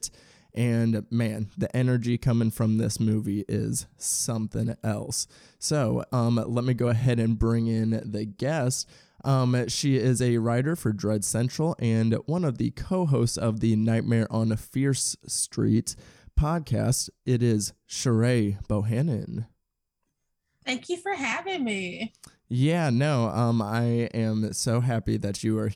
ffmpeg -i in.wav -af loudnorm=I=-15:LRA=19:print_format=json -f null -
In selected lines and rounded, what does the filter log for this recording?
"input_i" : "-26.2",
"input_tp" : "-11.0",
"input_lra" : "2.3",
"input_thresh" : "-36.3",